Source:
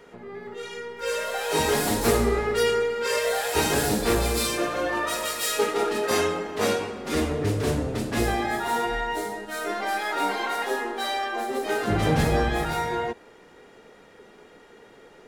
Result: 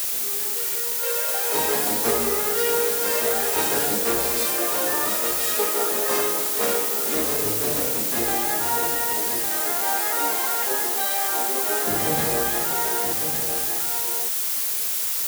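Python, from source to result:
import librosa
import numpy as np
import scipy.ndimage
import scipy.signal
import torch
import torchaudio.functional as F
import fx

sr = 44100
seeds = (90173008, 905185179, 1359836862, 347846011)

p1 = fx.high_shelf(x, sr, hz=2500.0, db=-11.5)
p2 = fx.quant_dither(p1, sr, seeds[0], bits=6, dither='triangular')
p3 = fx.highpass(p2, sr, hz=450.0, slope=6)
p4 = fx.high_shelf(p3, sr, hz=6000.0, db=11.5)
p5 = p4 + fx.echo_single(p4, sr, ms=1156, db=-7.5, dry=0)
y = F.gain(torch.from_numpy(p5), 1.5).numpy()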